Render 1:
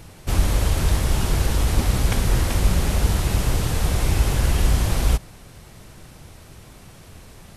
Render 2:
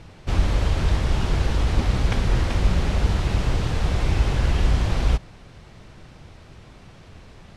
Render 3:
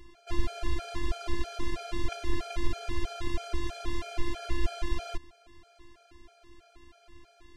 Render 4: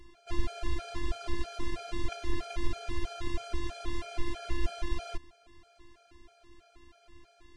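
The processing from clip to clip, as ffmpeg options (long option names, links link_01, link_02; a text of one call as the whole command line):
ffmpeg -i in.wav -af "lowpass=4500,volume=-1dB" out.wav
ffmpeg -i in.wav -af "afftfilt=real='hypot(re,im)*cos(PI*b)':imag='0':win_size=512:overlap=0.75,afftfilt=real='re*gt(sin(2*PI*3.1*pts/sr)*(1-2*mod(floor(b*sr/1024/430),2)),0)':imag='im*gt(sin(2*PI*3.1*pts/sr)*(1-2*mod(floor(b*sr/1024/430),2)),0)':win_size=1024:overlap=0.75,volume=-2dB" out.wav
ffmpeg -i in.wav -af "volume=-2dB" -ar 24000 -c:a aac -b:a 48k out.aac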